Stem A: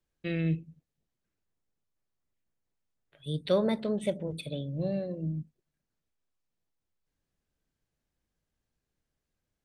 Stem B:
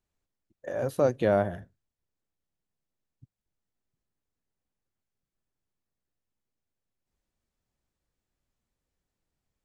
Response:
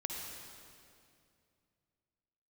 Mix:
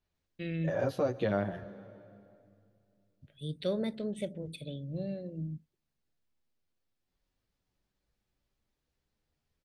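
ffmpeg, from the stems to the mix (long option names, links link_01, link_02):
-filter_complex "[0:a]equalizer=frequency=1000:width_type=o:width=0.94:gain=-10,adelay=150,volume=-4.5dB[link_01];[1:a]highshelf=frequency=6200:width_type=q:width=1.5:gain=-9,asplit=2[link_02][link_03];[link_03]adelay=9.2,afreqshift=0.3[link_04];[link_02][link_04]amix=inputs=2:normalize=1,volume=2.5dB,asplit=2[link_05][link_06];[link_06]volume=-16dB[link_07];[2:a]atrim=start_sample=2205[link_08];[link_07][link_08]afir=irnorm=-1:irlink=0[link_09];[link_01][link_05][link_09]amix=inputs=3:normalize=0,alimiter=limit=-20dB:level=0:latency=1:release=322"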